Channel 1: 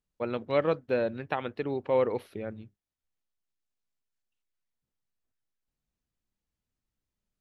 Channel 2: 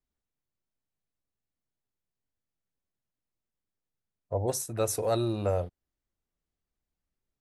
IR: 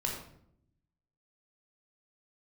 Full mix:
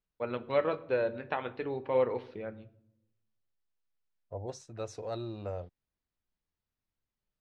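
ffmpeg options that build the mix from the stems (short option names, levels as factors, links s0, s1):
-filter_complex "[0:a]equalizer=f=1200:w=0.41:g=4.5,flanger=delay=5.8:depth=5.8:regen=-57:speed=0.4:shape=triangular,volume=0.708,asplit=2[s0][s1];[s1]volume=0.168[s2];[1:a]volume=0.316[s3];[2:a]atrim=start_sample=2205[s4];[s2][s4]afir=irnorm=-1:irlink=0[s5];[s0][s3][s5]amix=inputs=3:normalize=0,lowpass=f=5700:w=0.5412,lowpass=f=5700:w=1.3066"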